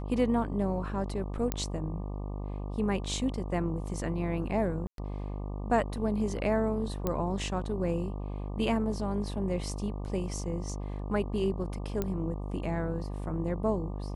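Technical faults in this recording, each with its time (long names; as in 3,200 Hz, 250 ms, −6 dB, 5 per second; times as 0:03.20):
mains buzz 50 Hz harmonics 24 −36 dBFS
0:01.52: click −13 dBFS
0:04.87–0:04.98: drop-out 112 ms
0:07.07: click −16 dBFS
0:12.02: click −17 dBFS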